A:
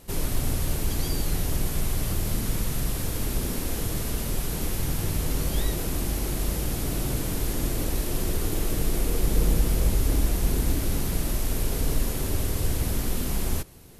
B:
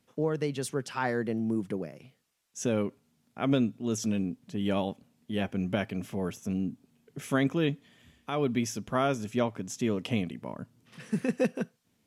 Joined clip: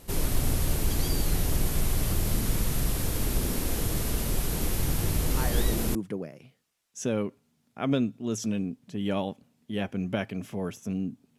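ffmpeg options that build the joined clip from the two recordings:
-filter_complex "[1:a]asplit=2[s0][s1];[0:a]apad=whole_dur=11.38,atrim=end=11.38,atrim=end=5.952[s2];[s1]atrim=start=1.548:end=6.98[s3];[s0]atrim=start=0.93:end=1.55,asetpts=PTS-STARTPTS,volume=0.501,afade=t=in:d=0.004:c=hsin,afade=t=out:st=0.616:d=0.004:c=hsin,adelay=235053S[s4];[s2][s3]acrossfade=d=0.004:c1=hsin:c2=hsin[s5];[s5][s4]amix=inputs=2:normalize=0"

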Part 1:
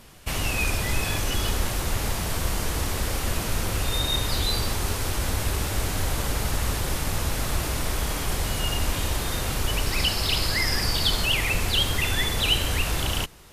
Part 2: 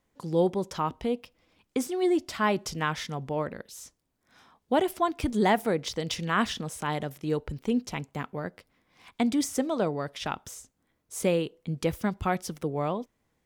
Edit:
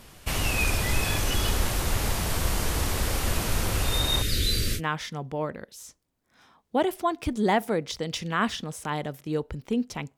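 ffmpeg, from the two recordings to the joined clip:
-filter_complex "[0:a]asettb=1/sr,asplit=3[s0][s1][s2];[s0]atrim=end=4.224[s3];[s1]atrim=start=4.22:end=4.81,asetpts=PTS-STARTPTS,afade=t=in:d=0.004:c=qsin,afade=t=out:st=0.586:d=0.004:c=qsin,asuperstop=centerf=880:order=4:qfactor=0.71[s4];[s2]atrim=start=4.806[s5];[s3][s4]acrossfade=d=0.004:c1=hsin:c2=qsin[s6];[s6][s5]acrossfade=d=0.004:c1=qsin:c2=hsin,apad=whole_dur=10.17,atrim=end=10.17,atrim=end=4.81,asetpts=PTS-STARTPTS[s7];[1:a]atrim=start=2.72:end=8.14,asetpts=PTS-STARTPTS[s8];[s7][s8]acrossfade=d=0.06:c1=tri:c2=tri"

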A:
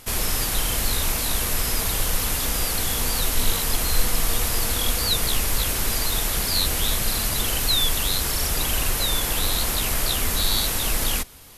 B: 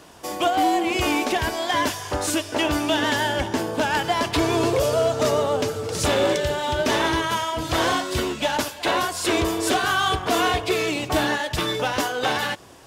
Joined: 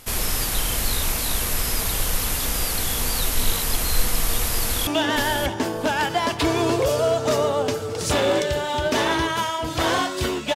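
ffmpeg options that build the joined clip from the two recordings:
-filter_complex "[0:a]apad=whole_dur=10.55,atrim=end=10.55,atrim=end=4.872[s0];[1:a]atrim=start=2.808:end=8.49[s1];[s0][s1]acrossfade=d=0.004:c1=hsin:c2=hsin,asplit=2[s2][s3];[s3]afade=t=in:st=4.57:d=0.01,afade=t=out:st=4.87:d=0.01,aecho=0:1:590|1180:0.398107|0.0597161[s4];[s2][s4]amix=inputs=2:normalize=0"

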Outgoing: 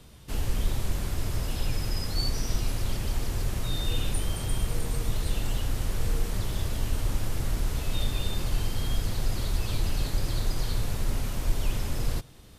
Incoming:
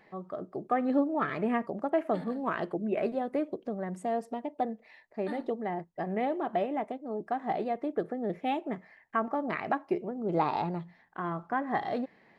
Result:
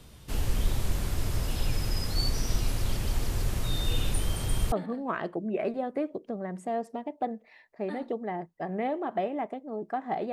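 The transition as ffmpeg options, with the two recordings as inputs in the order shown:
-filter_complex "[0:a]apad=whole_dur=10.32,atrim=end=10.32,atrim=end=4.722[s0];[1:a]atrim=start=2.098:end=7.7[s1];[s0][s1]acrossfade=d=0.004:c1=hsin:c2=hsin"

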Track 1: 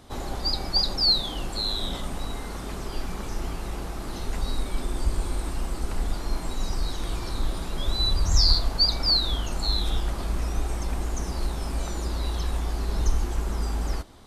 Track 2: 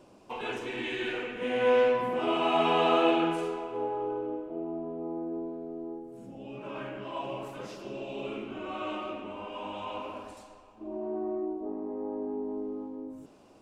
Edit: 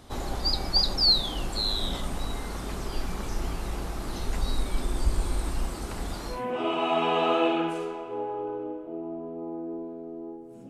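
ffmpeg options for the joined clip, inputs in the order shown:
-filter_complex "[0:a]asettb=1/sr,asplit=3[s0][s1][s2];[s0]atrim=end=5.694[s3];[s1]atrim=start=5.69:end=6.45,asetpts=PTS-STARTPTS,afade=t=in:d=0.004:c=qsin,afade=t=out:st=0.756:d=0.004:c=qsin,highpass=f=87:p=1[s4];[s2]atrim=start=6.446[s5];[s3][s4]acrossfade=d=0.004:c1=hsin:c2=qsin[s6];[s6][s5]acrossfade=d=0.004:c1=qsin:c2=hsin,apad=whole_dur=10.69,atrim=end=10.69,atrim=end=6.45,asetpts=PTS-STARTPTS[s7];[1:a]atrim=start=1.9:end=6.32,asetpts=PTS-STARTPTS[s8];[s7][s8]acrossfade=d=0.18:c1=tri:c2=tri"

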